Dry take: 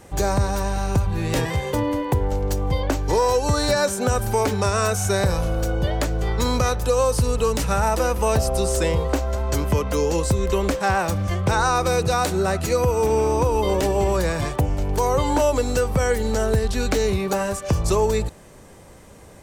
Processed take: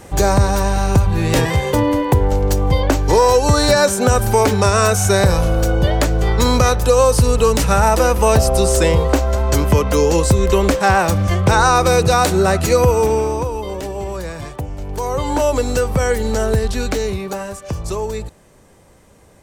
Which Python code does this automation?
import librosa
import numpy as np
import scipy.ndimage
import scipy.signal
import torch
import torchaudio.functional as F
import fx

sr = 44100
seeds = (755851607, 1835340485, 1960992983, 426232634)

y = fx.gain(x, sr, db=fx.line((12.9, 7.0), (13.66, -5.0), (14.72, -5.0), (15.53, 3.5), (16.65, 3.5), (17.48, -3.5)))